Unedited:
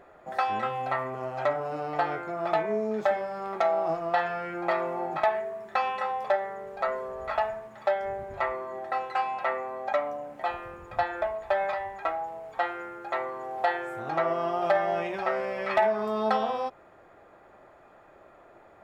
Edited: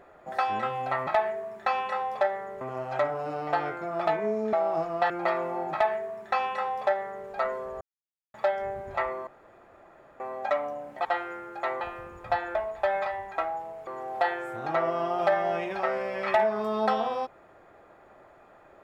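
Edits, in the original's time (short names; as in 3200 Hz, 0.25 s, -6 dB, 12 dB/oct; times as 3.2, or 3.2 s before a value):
2.99–3.65 cut
4.22–4.53 cut
5.16–6.7 copy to 1.07
7.24–7.77 mute
8.7–9.63 room tone
12.54–13.3 move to 10.48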